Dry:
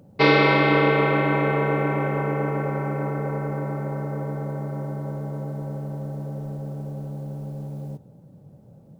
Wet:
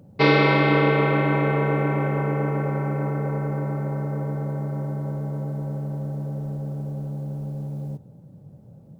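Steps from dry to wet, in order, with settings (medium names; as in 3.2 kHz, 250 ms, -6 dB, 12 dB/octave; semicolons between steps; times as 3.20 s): peaking EQ 95 Hz +5 dB 2.5 oct; trim -1.5 dB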